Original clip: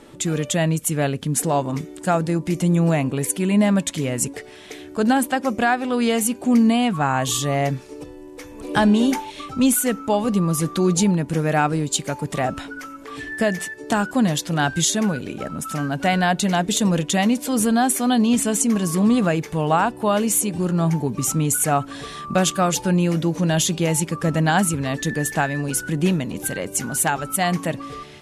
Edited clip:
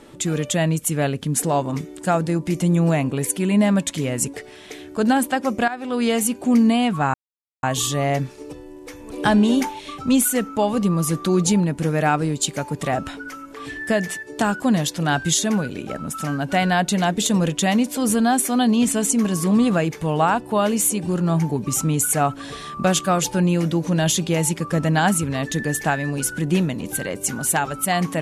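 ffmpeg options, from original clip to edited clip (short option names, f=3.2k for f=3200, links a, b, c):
-filter_complex "[0:a]asplit=3[a][b][c];[a]atrim=end=5.68,asetpts=PTS-STARTPTS,afade=t=out:st=5.676:d=0.004:c=hsin:silence=0.177828[d];[b]atrim=start=5.68:end=7.14,asetpts=PTS-STARTPTS,afade=t=in:d=0.48:c=qsin:silence=0.177828,afade=t=out:st=1.456:d=0.004:c=hsin,apad=pad_dur=0.49[e];[c]atrim=start=7.14,asetpts=PTS-STARTPTS,afade=t=in:d=0.004:c=hsin[f];[d][e][f]concat=n=3:v=0:a=1"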